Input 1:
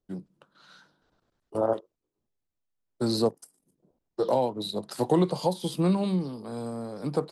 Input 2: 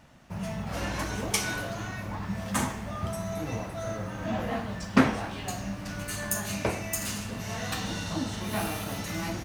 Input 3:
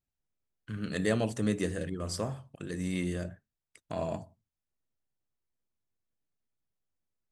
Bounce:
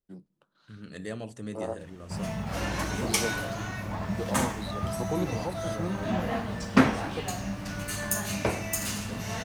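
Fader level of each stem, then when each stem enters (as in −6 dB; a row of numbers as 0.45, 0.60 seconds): −9.0, +1.0, −8.5 decibels; 0.00, 1.80, 0.00 seconds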